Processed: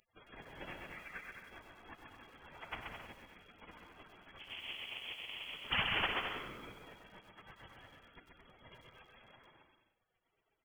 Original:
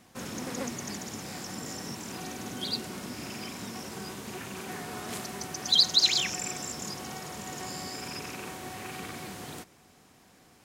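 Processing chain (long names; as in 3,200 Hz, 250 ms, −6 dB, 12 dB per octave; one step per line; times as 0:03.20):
reverb reduction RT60 0.84 s
mains-hum notches 50/100/150/200/250/300/350/400 Hz
gate on every frequency bin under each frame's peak −30 dB weak
0:00.92–0:01.35: flat-topped bell 1,100 Hz +13.5 dB
0:04.39–0:05.54: sample-rate reduction 1,800 Hz, jitter 20%
0:06.11–0:06.72: comb filter 1 ms, depth 46%
bouncing-ball delay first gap 130 ms, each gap 0.65×, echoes 5
voice inversion scrambler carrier 3,300 Hz
feedback echo at a low word length 96 ms, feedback 55%, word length 12 bits, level −10.5 dB
level +15.5 dB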